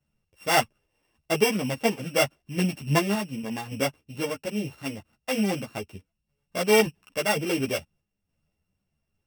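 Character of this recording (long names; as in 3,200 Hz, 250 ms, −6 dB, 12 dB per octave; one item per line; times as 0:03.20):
a buzz of ramps at a fixed pitch in blocks of 16 samples
sample-and-hold tremolo
a shimmering, thickened sound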